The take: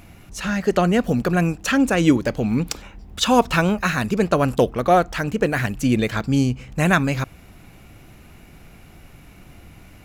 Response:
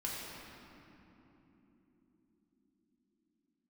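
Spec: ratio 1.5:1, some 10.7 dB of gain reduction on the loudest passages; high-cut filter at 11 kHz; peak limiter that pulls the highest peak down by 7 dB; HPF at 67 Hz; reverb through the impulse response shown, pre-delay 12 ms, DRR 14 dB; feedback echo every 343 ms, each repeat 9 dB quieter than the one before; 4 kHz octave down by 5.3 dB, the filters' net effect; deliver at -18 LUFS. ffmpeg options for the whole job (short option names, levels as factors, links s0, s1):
-filter_complex "[0:a]highpass=67,lowpass=11000,equalizer=f=4000:t=o:g=-7,acompressor=threshold=0.00891:ratio=1.5,alimiter=limit=0.0944:level=0:latency=1,aecho=1:1:343|686|1029|1372:0.355|0.124|0.0435|0.0152,asplit=2[s0][s1];[1:a]atrim=start_sample=2205,adelay=12[s2];[s1][s2]afir=irnorm=-1:irlink=0,volume=0.15[s3];[s0][s3]amix=inputs=2:normalize=0,volume=4.22"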